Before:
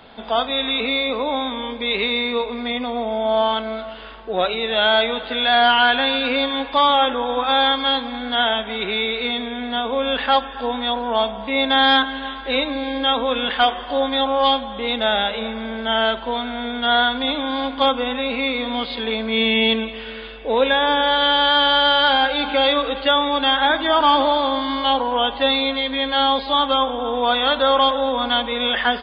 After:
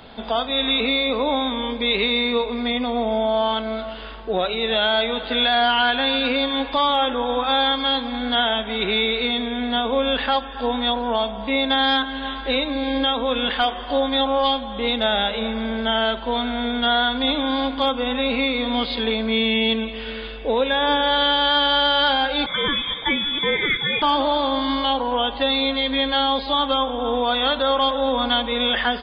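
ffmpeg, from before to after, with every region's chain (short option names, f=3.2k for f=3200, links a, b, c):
-filter_complex "[0:a]asettb=1/sr,asplit=3[a][b][c];[a]atrim=end=22.464[d];[b]atrim=start=22.46:end=24.02,asetpts=PTS-STARTPTS,afade=t=in:d=0.004:c=qsin,afade=t=out:st=1.556:d=0.004:c=qsin,asuperstop=centerf=800:order=8:qfactor=0.93,lowpass=f=3.1k:t=q:w=0.5098,lowpass=f=3.1k:t=q:w=0.6013,lowpass=f=3.1k:t=q:w=0.9,lowpass=f=3.1k:t=q:w=2.563,afreqshift=-3700[e];[c]atrim=start=24.016[f];[d][e]acrossfade=d=0.004:c1=hsin:c2=qsin[g];[g][f]acrossfade=d=0.004:c1=qsin:c2=hsin,lowshelf=f=240:g=10,alimiter=limit=-11dB:level=0:latency=1:release=361,bass=f=250:g=-3,treble=f=4k:g=6"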